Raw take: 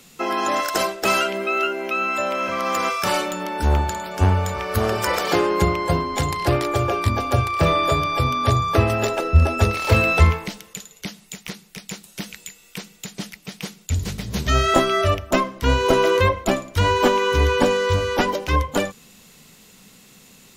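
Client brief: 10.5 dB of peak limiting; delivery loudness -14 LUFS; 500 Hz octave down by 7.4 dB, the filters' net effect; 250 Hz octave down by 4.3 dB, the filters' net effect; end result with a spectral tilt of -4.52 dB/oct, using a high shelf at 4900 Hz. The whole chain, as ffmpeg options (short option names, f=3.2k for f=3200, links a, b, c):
-af "equalizer=f=250:t=o:g=-3,equalizer=f=500:t=o:g=-8.5,highshelf=f=4.9k:g=-3.5,volume=10.5dB,alimiter=limit=-4dB:level=0:latency=1"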